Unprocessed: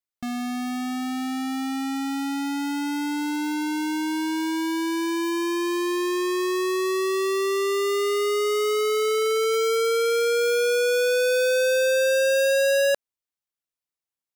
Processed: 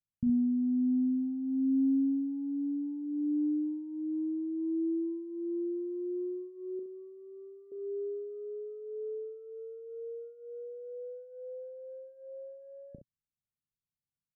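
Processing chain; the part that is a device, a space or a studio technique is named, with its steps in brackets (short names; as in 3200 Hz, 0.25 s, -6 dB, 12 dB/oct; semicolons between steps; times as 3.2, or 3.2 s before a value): the neighbour's flat through the wall (LPF 220 Hz 24 dB/oct; bell 130 Hz +5 dB 0.82 oct); 6.79–7.72 bell 300 Hz -10.5 dB 1.7 oct; early reflections 12 ms -17 dB, 37 ms -10 dB, 67 ms -9 dB; gain +5 dB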